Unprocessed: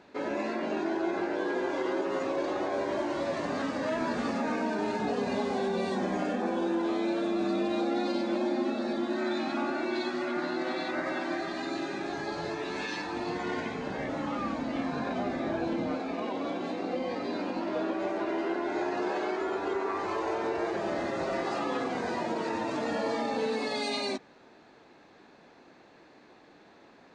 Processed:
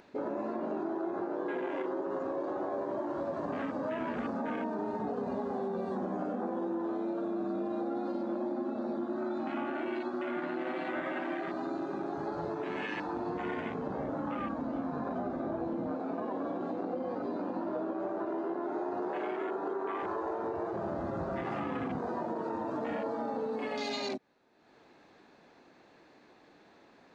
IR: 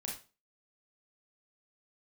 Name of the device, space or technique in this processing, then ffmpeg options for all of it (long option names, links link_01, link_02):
upward and downward compression: -filter_complex "[0:a]afwtdn=0.0158,asettb=1/sr,asplit=3[link_01][link_02][link_03];[link_01]atrim=end=20.184[link_04];[link_02]atrim=start=20.18:end=21.99,asetpts=PTS-STARTPTS,afade=type=in:duration=0.004:curve=qsin,afade=type=out:start_time=1.806:duration=0.004:curve=qsin,asubboost=boost=9.5:cutoff=180[link_05];[link_03]atrim=start=21.986[link_06];[link_04][link_05]acrossfade=duration=0.004:curve1=hsin:curve2=qsin[link_07];[link_07][link_06]acrossfade=duration=0.004:curve1=qsin:curve2=hsin,acompressor=mode=upward:threshold=-51dB:ratio=2.5,acompressor=threshold=-35dB:ratio=4,volume=2.5dB"